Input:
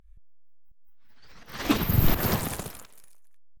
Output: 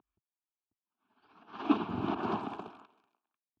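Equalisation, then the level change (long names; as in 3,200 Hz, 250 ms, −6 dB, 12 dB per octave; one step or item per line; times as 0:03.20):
Chebyshev band-pass filter 130–2,600 Hz, order 3
low-shelf EQ 180 Hz −4 dB
phaser with its sweep stopped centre 530 Hz, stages 6
0.0 dB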